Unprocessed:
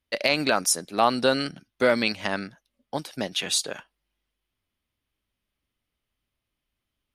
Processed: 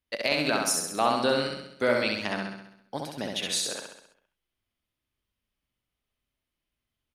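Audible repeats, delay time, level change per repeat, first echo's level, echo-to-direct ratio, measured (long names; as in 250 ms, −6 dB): 7, 66 ms, −5.0 dB, −3.0 dB, −1.5 dB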